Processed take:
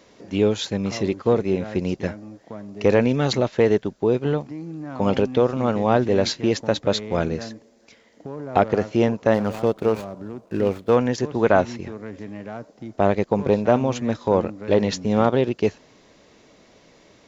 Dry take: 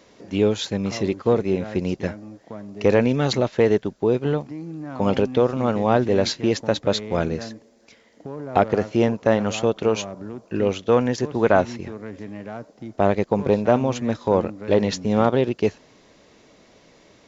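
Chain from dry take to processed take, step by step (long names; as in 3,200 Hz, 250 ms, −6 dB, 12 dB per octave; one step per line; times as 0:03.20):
0:09.34–0:10.96: running median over 15 samples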